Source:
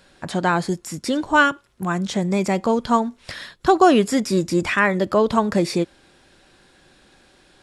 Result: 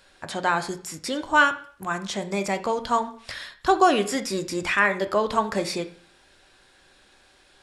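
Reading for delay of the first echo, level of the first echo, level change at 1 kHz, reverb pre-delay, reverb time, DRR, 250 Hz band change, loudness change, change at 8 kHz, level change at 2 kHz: none, none, -2.5 dB, 5 ms, 0.50 s, 8.5 dB, -9.5 dB, -4.0 dB, -1.5 dB, -1.5 dB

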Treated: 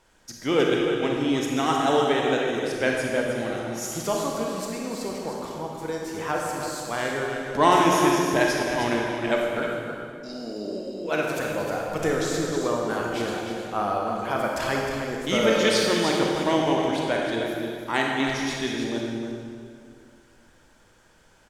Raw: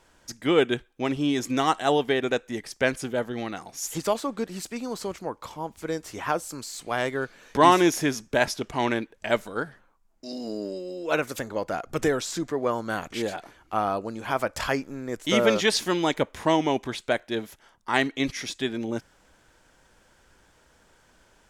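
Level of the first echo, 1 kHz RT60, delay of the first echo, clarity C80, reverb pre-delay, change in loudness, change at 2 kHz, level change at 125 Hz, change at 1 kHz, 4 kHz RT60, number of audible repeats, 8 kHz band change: -7.5 dB, 2.0 s, 0.31 s, 0.5 dB, 28 ms, +1.5 dB, +2.0 dB, +2.5 dB, +1.5 dB, 1.8 s, 1, +1.5 dB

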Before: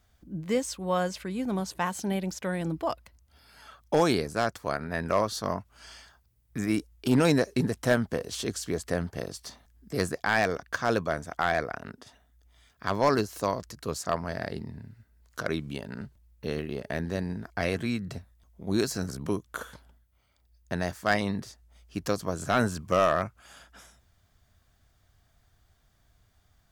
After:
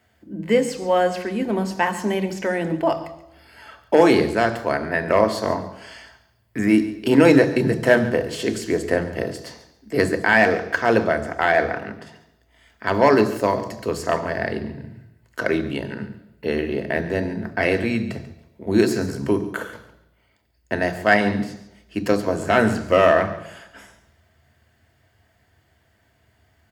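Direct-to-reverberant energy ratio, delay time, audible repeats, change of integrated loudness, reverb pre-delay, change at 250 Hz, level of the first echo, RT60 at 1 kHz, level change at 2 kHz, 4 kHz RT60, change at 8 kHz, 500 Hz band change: 7.5 dB, 0.14 s, 2, +9.0 dB, 3 ms, +9.0 dB, -16.5 dB, 0.85 s, +10.5 dB, 0.85 s, +1.0 dB, +10.0 dB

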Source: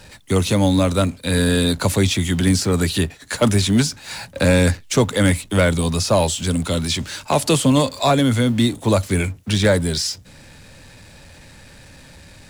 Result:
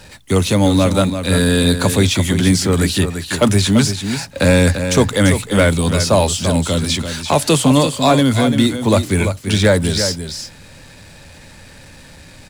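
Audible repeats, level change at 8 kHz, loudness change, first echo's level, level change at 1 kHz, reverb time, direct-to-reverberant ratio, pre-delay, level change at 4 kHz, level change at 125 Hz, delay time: 1, +3.5 dB, +3.5 dB, -8.5 dB, +3.5 dB, none, none, none, +3.5 dB, +3.0 dB, 0.341 s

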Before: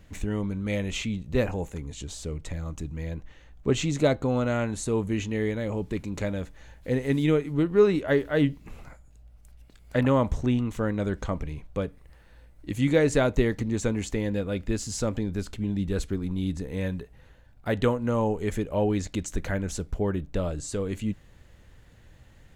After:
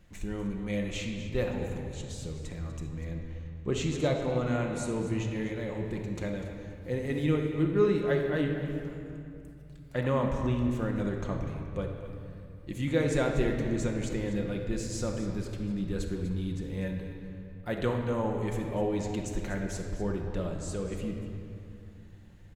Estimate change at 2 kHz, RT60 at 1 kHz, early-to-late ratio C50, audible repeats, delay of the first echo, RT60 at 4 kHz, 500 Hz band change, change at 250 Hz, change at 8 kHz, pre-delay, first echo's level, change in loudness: -4.5 dB, 2.6 s, 3.5 dB, 1, 0.246 s, 1.7 s, -4.5 dB, -4.0 dB, -5.5 dB, 6 ms, -13.5 dB, -4.5 dB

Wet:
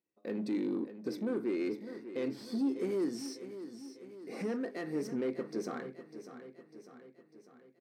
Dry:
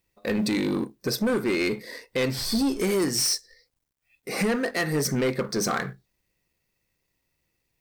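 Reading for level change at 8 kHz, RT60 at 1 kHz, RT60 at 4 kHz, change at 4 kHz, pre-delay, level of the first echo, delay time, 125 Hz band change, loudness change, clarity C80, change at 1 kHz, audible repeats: -23.5 dB, none, none, -22.0 dB, none, -12.0 dB, 0.599 s, -16.5 dB, -11.0 dB, none, -15.0 dB, 5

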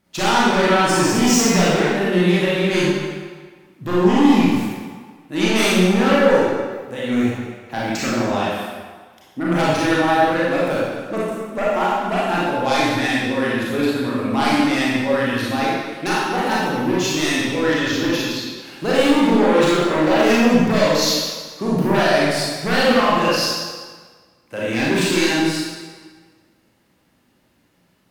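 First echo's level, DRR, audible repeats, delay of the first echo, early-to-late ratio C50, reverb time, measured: none, -8.0 dB, none, none, -3.5 dB, 1.5 s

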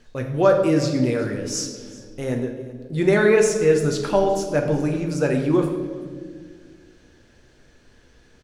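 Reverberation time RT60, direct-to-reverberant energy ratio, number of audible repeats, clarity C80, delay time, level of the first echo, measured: 1.8 s, 2.5 dB, 1, 8.5 dB, 0.38 s, -20.5 dB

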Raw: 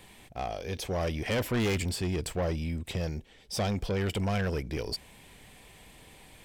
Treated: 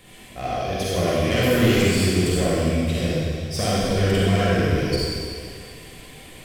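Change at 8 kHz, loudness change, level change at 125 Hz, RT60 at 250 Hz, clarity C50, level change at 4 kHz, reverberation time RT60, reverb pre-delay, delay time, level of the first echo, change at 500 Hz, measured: +10.5 dB, +10.5 dB, +10.0 dB, 2.2 s, -5.5 dB, +11.0 dB, 2.2 s, 31 ms, none, none, +11.0 dB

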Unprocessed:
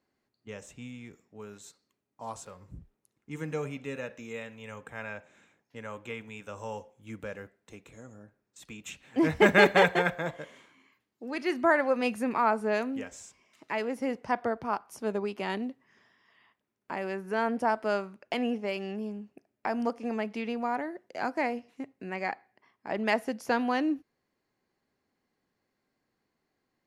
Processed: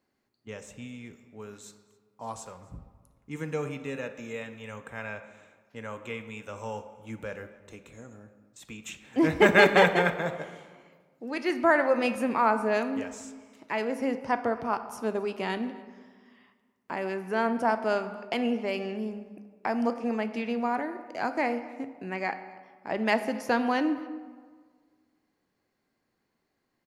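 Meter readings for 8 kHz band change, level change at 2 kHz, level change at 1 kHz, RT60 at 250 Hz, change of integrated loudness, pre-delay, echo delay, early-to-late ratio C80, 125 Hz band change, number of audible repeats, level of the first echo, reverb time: +1.5 dB, +2.0 dB, +2.0 dB, 1.8 s, +2.0 dB, 12 ms, 0.264 s, 12.5 dB, +2.0 dB, 1, -23.5 dB, 1.6 s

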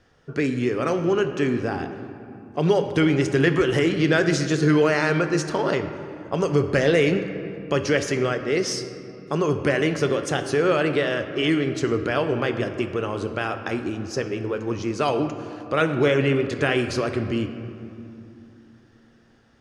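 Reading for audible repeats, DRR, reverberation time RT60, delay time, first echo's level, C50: none, 6.5 dB, 2.6 s, none, none, 9.0 dB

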